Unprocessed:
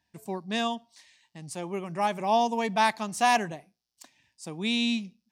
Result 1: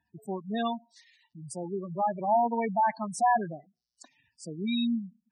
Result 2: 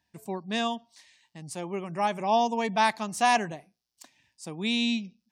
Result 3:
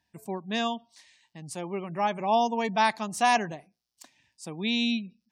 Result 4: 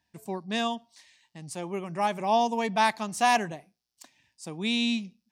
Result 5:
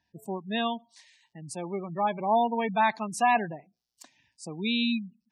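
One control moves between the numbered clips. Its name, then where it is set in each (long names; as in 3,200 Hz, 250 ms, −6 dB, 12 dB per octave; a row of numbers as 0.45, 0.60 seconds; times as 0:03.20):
gate on every frequency bin, under each frame's peak: −10, −45, −35, −60, −20 decibels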